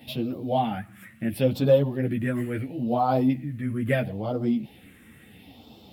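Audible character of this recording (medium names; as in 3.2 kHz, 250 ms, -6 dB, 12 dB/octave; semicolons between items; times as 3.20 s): phasing stages 4, 0.74 Hz, lowest notch 760–1800 Hz; a quantiser's noise floor 12-bit, dither none; a shimmering, thickened sound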